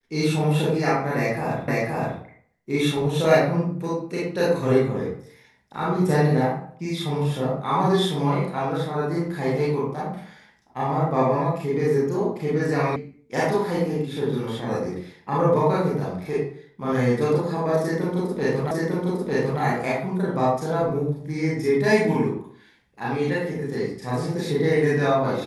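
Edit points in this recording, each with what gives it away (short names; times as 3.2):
1.68 repeat of the last 0.52 s
12.96 sound cut off
18.71 repeat of the last 0.9 s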